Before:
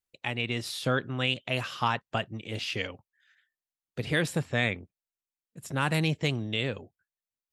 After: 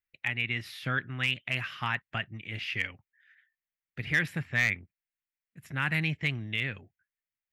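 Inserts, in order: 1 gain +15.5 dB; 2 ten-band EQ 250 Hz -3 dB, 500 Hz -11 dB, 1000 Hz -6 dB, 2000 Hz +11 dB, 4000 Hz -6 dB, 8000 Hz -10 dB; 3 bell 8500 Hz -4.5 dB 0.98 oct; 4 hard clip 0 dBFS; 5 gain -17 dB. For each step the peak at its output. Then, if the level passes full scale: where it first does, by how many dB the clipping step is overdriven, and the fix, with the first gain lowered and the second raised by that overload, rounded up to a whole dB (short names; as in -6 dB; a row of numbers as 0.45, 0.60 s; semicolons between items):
+3.5, +5.0, +5.0, 0.0, -17.0 dBFS; step 1, 5.0 dB; step 1 +10.5 dB, step 5 -12 dB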